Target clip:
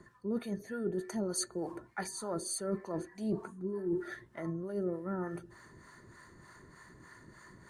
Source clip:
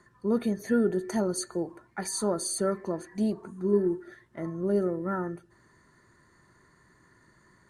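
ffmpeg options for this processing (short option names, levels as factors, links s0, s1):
-filter_complex "[0:a]areverse,acompressor=threshold=0.0112:ratio=6,areverse,acrossover=split=580[s0][s1];[s0]aeval=exprs='val(0)*(1-0.7/2+0.7/2*cos(2*PI*3.3*n/s))':c=same[s2];[s1]aeval=exprs='val(0)*(1-0.7/2-0.7/2*cos(2*PI*3.3*n/s))':c=same[s3];[s2][s3]amix=inputs=2:normalize=0,volume=2.66"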